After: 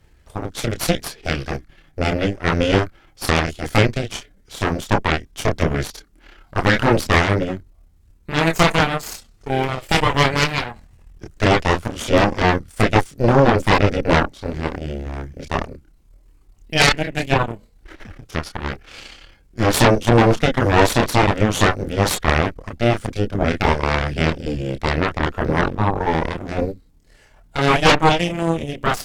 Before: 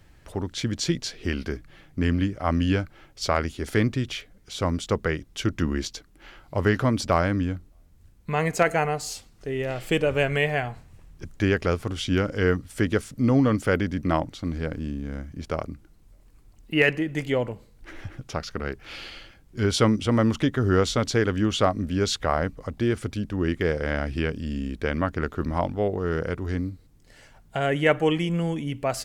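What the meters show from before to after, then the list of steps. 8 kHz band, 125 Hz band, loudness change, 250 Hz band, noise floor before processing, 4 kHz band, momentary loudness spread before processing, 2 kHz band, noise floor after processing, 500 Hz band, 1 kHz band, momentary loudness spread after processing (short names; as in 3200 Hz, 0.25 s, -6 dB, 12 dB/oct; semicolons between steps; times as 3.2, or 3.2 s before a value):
+7.0 dB, +6.0 dB, +6.5 dB, +3.5 dB, -55 dBFS, +8.5 dB, 13 LU, +8.0 dB, -53 dBFS, +5.5 dB, +10.5 dB, 14 LU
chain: chorus voices 6, 0.15 Hz, delay 28 ms, depth 2.7 ms; added harmonics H 4 -6 dB, 8 -7 dB, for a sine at -8 dBFS; gain +2 dB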